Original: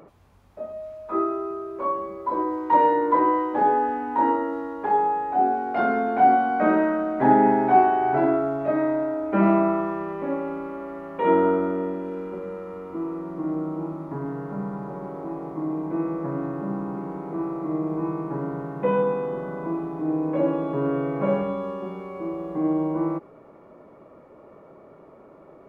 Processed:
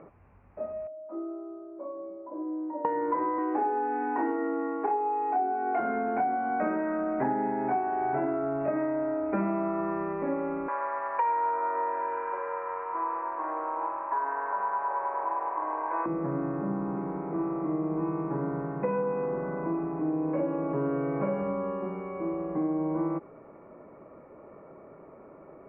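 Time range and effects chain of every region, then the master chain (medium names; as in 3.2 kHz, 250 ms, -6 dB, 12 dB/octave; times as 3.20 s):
0.87–2.85 s: compression 2:1, threshold -27 dBFS + two resonant band-passes 430 Hz, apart 0.89 oct
3.38–5.80 s: median filter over 9 samples + high-pass 180 Hz + comb 2.7 ms, depth 91%
10.68–16.06 s: high-pass 560 Hz 24 dB/octave + waveshaping leveller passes 1 + small resonant body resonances 1/1.6 kHz, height 15 dB, ringing for 25 ms
whole clip: steep low-pass 2.6 kHz 72 dB/octave; compression 10:1, threshold -24 dBFS; trim -1 dB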